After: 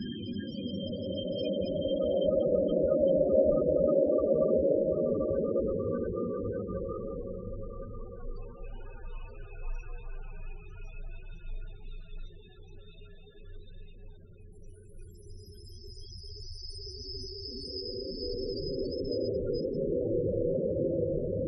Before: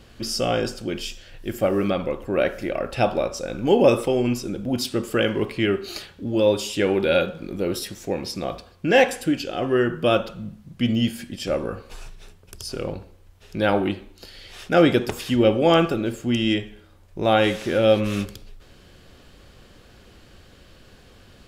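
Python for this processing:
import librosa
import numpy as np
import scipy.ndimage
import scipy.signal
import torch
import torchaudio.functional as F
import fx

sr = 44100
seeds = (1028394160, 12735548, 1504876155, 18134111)

y = fx.paulstretch(x, sr, seeds[0], factor=13.0, window_s=0.5, from_s=11.27)
y = fx.dynamic_eq(y, sr, hz=120.0, q=3.8, threshold_db=-53.0, ratio=4.0, max_db=-5)
y = fx.spec_topn(y, sr, count=16)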